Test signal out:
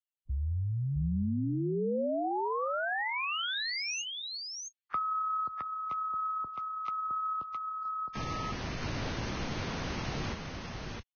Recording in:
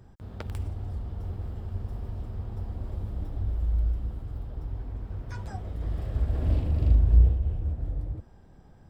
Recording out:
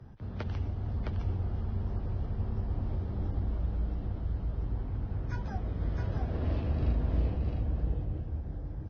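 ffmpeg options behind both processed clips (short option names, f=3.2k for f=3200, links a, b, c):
-filter_complex "[0:a]bass=f=250:g=8,treble=f=4k:g=-8,acrossover=split=82|170|490[a][b][c][d];[a]acompressor=threshold=-26dB:ratio=4[e];[b]acompressor=threshold=-37dB:ratio=4[f];[c]acompressor=threshold=-36dB:ratio=4[g];[d]acompressor=threshold=-34dB:ratio=4[h];[e][f][g][h]amix=inputs=4:normalize=0,lowshelf=f=76:g=-11,aecho=1:1:663:0.668" -ar 16000 -c:a libvorbis -b:a 16k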